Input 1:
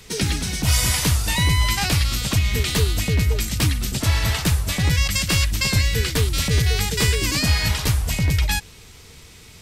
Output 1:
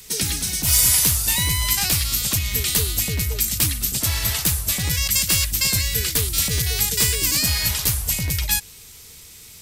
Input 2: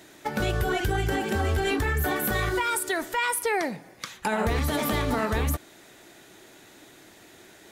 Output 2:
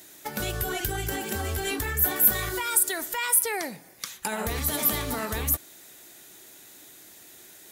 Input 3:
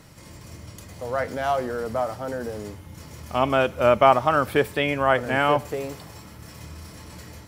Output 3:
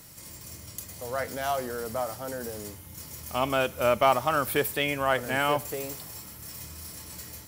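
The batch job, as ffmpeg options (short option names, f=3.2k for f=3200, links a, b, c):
-filter_complex "[0:a]asplit=2[a][b];[b]asoftclip=type=hard:threshold=-14.5dB,volume=-11.5dB[c];[a][c]amix=inputs=2:normalize=0,aemphasis=mode=production:type=75fm,volume=-7dB"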